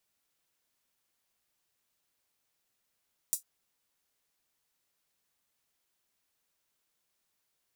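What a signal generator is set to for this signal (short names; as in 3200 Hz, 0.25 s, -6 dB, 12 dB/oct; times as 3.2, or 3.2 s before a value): closed hi-hat length 0.10 s, high-pass 7500 Hz, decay 0.13 s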